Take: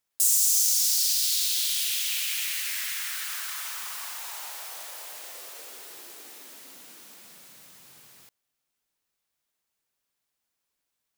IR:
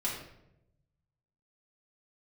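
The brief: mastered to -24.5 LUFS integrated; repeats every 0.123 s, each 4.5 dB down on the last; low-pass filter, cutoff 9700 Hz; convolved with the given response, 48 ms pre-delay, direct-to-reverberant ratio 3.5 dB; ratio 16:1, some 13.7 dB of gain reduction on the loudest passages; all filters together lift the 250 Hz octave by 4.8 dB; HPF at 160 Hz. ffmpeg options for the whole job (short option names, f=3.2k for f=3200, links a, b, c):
-filter_complex "[0:a]highpass=160,lowpass=9.7k,equalizer=f=250:t=o:g=7,acompressor=threshold=-35dB:ratio=16,aecho=1:1:123|246|369|492|615|738|861|984|1107:0.596|0.357|0.214|0.129|0.0772|0.0463|0.0278|0.0167|0.01,asplit=2[a][b];[1:a]atrim=start_sample=2205,adelay=48[c];[b][c]afir=irnorm=-1:irlink=0,volume=-8.5dB[d];[a][d]amix=inputs=2:normalize=0,volume=10.5dB"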